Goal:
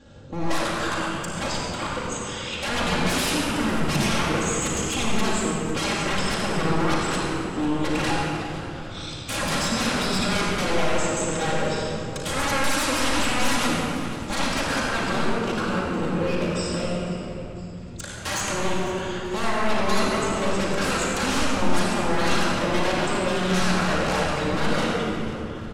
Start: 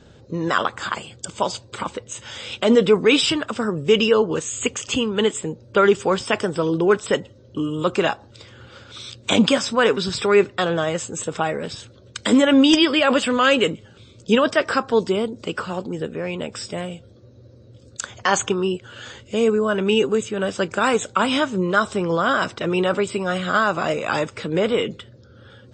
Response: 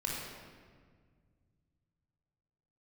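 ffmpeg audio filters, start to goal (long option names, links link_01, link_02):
-filter_complex "[0:a]aeval=exprs='0.0841*(abs(mod(val(0)/0.0841+3,4)-2)-1)':channel_layout=same,asplit=6[link_01][link_02][link_03][link_04][link_05][link_06];[link_02]adelay=498,afreqshift=-140,volume=-17dB[link_07];[link_03]adelay=996,afreqshift=-280,volume=-22dB[link_08];[link_04]adelay=1494,afreqshift=-420,volume=-27.1dB[link_09];[link_05]adelay=1992,afreqshift=-560,volume=-32.1dB[link_10];[link_06]adelay=2490,afreqshift=-700,volume=-37.1dB[link_11];[link_01][link_07][link_08][link_09][link_10][link_11]amix=inputs=6:normalize=0[link_12];[1:a]atrim=start_sample=2205,asetrate=24255,aresample=44100[link_13];[link_12][link_13]afir=irnorm=-1:irlink=0,volume=-5dB"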